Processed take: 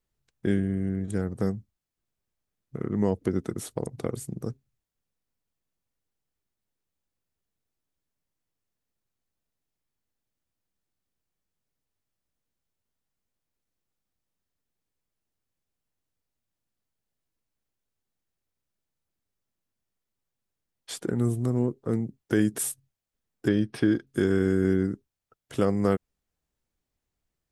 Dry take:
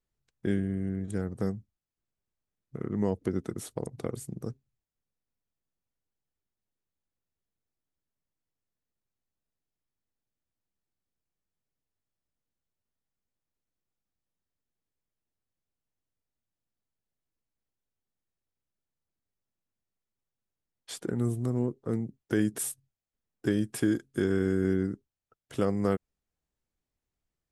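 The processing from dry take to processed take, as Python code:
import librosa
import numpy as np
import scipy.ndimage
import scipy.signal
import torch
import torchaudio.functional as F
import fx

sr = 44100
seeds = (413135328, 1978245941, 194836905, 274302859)

y = fx.savgol(x, sr, points=15, at=(23.48, 24.07))
y = y * librosa.db_to_amplitude(3.5)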